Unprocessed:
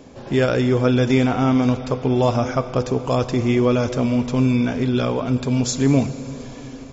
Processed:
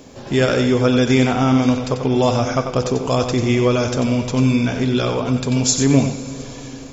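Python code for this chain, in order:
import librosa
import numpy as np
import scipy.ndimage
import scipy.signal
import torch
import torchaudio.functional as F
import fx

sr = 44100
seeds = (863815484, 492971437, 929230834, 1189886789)

p1 = fx.high_shelf(x, sr, hz=3800.0, db=9.0)
p2 = fx.quant_dither(p1, sr, seeds[0], bits=12, dither='none')
p3 = p2 + fx.echo_single(p2, sr, ms=92, db=-7.5, dry=0)
y = p3 * 10.0 ** (1.0 / 20.0)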